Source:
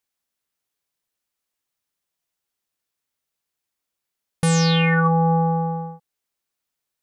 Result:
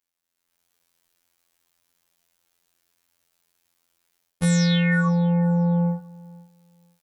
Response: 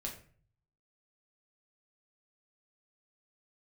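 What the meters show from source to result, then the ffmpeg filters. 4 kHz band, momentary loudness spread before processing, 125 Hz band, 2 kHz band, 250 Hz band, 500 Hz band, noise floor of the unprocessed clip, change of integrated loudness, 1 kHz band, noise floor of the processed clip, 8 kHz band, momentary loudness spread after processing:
−4.0 dB, 11 LU, −0.5 dB, −3.0 dB, +1.5 dB, −4.5 dB, −83 dBFS, −2.0 dB, −11.5 dB, −81 dBFS, −3.5 dB, 7 LU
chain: -af "areverse,acompressor=threshold=-30dB:ratio=12,areverse,afftfilt=real='hypot(re,im)*cos(PI*b)':imag='0':win_size=2048:overlap=0.75,aecho=1:1:498|996:0.0708|0.0142,dynaudnorm=framelen=150:gausssize=7:maxgain=14.5dB"

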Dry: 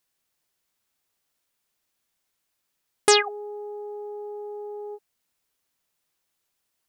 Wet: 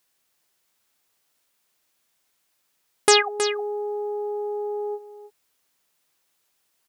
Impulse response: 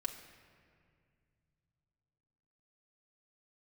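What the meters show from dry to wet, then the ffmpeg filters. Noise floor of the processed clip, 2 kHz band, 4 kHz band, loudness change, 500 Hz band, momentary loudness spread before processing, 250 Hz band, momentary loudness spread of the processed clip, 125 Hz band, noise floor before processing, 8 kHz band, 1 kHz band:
−72 dBFS, +2.5 dB, +2.5 dB, +2.0 dB, +3.5 dB, 18 LU, +2.5 dB, 13 LU, can't be measured, −78 dBFS, +2.0 dB, +2.5 dB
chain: -filter_complex "[0:a]lowshelf=frequency=160:gain=-7,aecho=1:1:318:0.224,asplit=2[link_01][link_02];[link_02]alimiter=limit=-15dB:level=0:latency=1:release=490,volume=2.5dB[link_03];[link_01][link_03]amix=inputs=2:normalize=0,volume=-1dB"

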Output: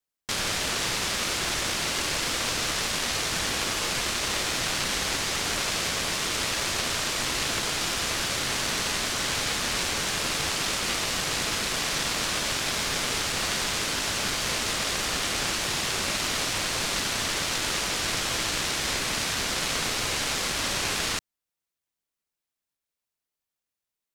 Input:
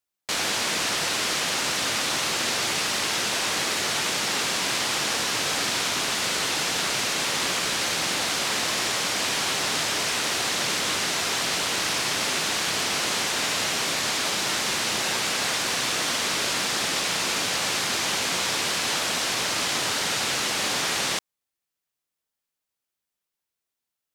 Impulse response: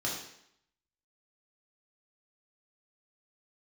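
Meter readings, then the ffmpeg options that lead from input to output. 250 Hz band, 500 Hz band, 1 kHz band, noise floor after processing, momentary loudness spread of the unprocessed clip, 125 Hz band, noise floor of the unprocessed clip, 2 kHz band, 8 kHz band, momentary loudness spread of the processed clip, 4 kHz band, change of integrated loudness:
−1.0 dB, −2.5 dB, −3.0 dB, below −85 dBFS, 0 LU, +3.0 dB, −85 dBFS, −2.5 dB, −2.0 dB, 0 LU, −2.5 dB, −2.5 dB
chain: -af "aeval=exprs='0.266*(cos(1*acos(clip(val(0)/0.266,-1,1)))-cos(1*PI/2))+0.0299*(cos(3*acos(clip(val(0)/0.266,-1,1)))-cos(3*PI/2))+0.00841*(cos(4*acos(clip(val(0)/0.266,-1,1)))-cos(4*PI/2))':channel_layout=same,aeval=exprs='val(0)*sin(2*PI*850*n/s)':channel_layout=same,lowshelf=frequency=170:gain=3.5,volume=3.5dB"

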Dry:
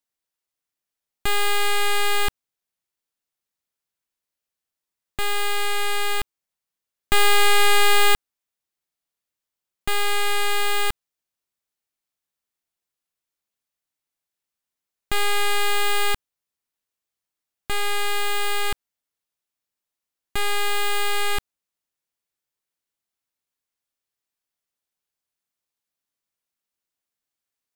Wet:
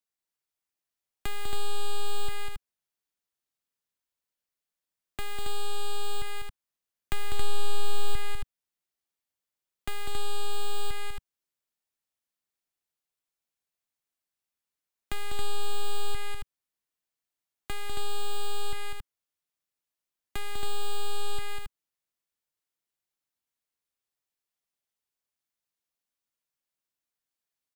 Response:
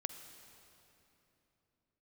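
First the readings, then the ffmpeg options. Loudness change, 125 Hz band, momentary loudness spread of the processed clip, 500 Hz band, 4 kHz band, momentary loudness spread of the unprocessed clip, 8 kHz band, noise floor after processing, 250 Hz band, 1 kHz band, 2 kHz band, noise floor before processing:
−14.5 dB, −1.5 dB, 9 LU, −11.0 dB, −13.0 dB, 13 LU, −13.5 dB, below −85 dBFS, −9.5 dB, −13.5 dB, −18.0 dB, below −85 dBFS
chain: -filter_complex "[0:a]acrossover=split=140[link_01][link_02];[link_02]acompressor=threshold=-30dB:ratio=6[link_03];[link_01][link_03]amix=inputs=2:normalize=0,aecho=1:1:198.3|274.1:0.501|0.562,volume=-5.5dB"

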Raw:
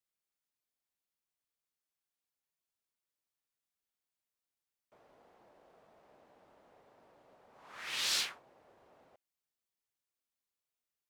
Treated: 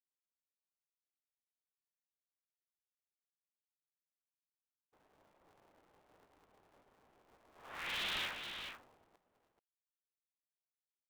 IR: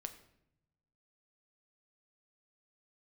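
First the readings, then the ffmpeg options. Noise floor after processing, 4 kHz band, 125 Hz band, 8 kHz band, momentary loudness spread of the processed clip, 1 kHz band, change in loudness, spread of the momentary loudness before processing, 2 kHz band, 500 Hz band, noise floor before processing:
below −85 dBFS, −4.5 dB, +5.0 dB, −15.5 dB, 18 LU, +1.5 dB, −6.0 dB, 10 LU, 0.0 dB, 0.0 dB, below −85 dBFS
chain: -af "agate=range=-33dB:threshold=-56dB:ratio=3:detection=peak,aresample=8000,asoftclip=type=tanh:threshold=-38.5dB,aresample=44100,aecho=1:1:433:0.422,aeval=exprs='val(0)*sgn(sin(2*PI*170*n/s))':channel_layout=same,volume=3.5dB"

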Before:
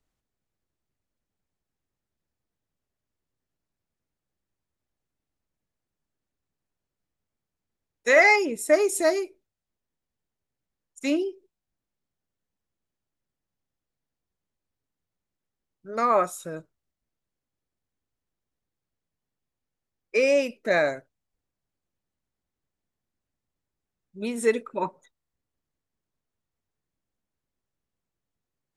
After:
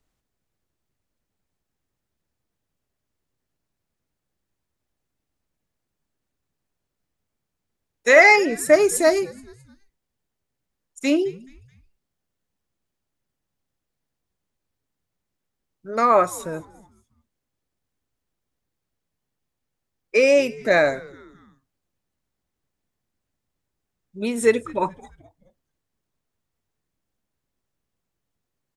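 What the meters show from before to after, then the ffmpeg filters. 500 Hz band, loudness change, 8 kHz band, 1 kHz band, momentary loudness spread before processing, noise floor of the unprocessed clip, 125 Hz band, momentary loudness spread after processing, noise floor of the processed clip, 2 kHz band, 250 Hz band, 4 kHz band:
+5.0 dB, +5.0 dB, +5.0 dB, +5.0 dB, 17 LU, below −85 dBFS, +6.0 dB, 17 LU, −81 dBFS, +5.0 dB, +5.0 dB, +5.0 dB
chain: -filter_complex "[0:a]asplit=4[link_01][link_02][link_03][link_04];[link_02]adelay=214,afreqshift=-130,volume=-23dB[link_05];[link_03]adelay=428,afreqshift=-260,volume=-29.7dB[link_06];[link_04]adelay=642,afreqshift=-390,volume=-36.5dB[link_07];[link_01][link_05][link_06][link_07]amix=inputs=4:normalize=0,volume=5dB"

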